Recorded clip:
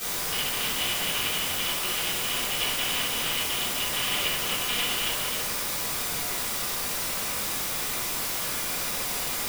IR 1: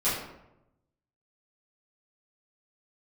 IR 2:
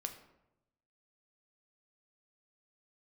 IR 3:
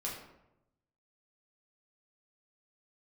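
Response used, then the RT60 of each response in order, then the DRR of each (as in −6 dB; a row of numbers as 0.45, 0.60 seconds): 1; 0.90, 0.90, 0.90 seconds; −12.5, 5.5, −4.5 decibels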